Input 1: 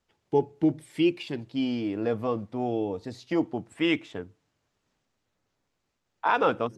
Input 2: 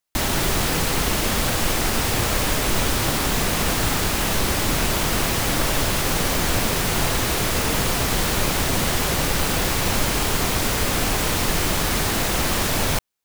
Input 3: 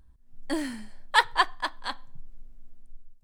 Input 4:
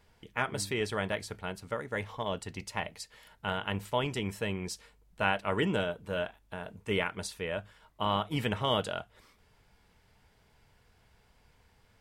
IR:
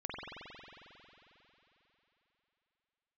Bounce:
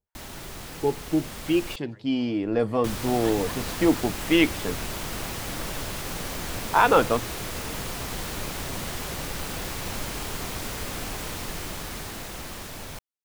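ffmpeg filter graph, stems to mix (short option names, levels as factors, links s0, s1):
-filter_complex "[0:a]adelay=500,volume=0.841[s0];[1:a]volume=0.126,asplit=3[s1][s2][s3];[s1]atrim=end=1.76,asetpts=PTS-STARTPTS,afade=t=out:st=1.756:d=0.004:c=hsin[s4];[s2]atrim=start=1.76:end=2.84,asetpts=PTS-STARTPTS,volume=0[s5];[s3]atrim=start=2.84,asetpts=PTS-STARTPTS,afade=t=in:d=0.004:c=hsin[s6];[s4][s5][s6]concat=n=3:v=0:a=1[s7];[2:a]acompressor=threshold=0.0158:ratio=2,adelay=2100,volume=0.15[s8];[3:a]lowpass=1500,acrossover=split=800[s9][s10];[s9]aeval=exprs='val(0)*(1-1/2+1/2*cos(2*PI*4.4*n/s))':c=same[s11];[s10]aeval=exprs='val(0)*(1-1/2-1/2*cos(2*PI*4.4*n/s))':c=same[s12];[s11][s12]amix=inputs=2:normalize=0,volume=0.112[s13];[s0][s7][s8][s13]amix=inputs=4:normalize=0,dynaudnorm=f=490:g=9:m=2.24"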